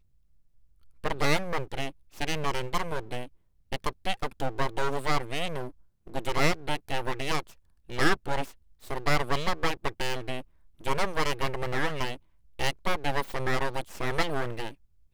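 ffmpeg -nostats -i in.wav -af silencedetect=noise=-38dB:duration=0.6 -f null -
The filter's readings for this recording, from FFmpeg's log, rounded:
silence_start: 0.00
silence_end: 1.04 | silence_duration: 1.04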